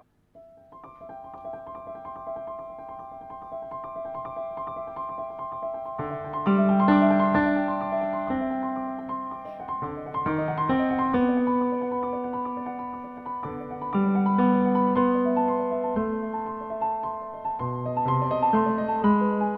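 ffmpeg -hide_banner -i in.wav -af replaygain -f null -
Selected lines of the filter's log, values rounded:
track_gain = +6.1 dB
track_peak = 0.285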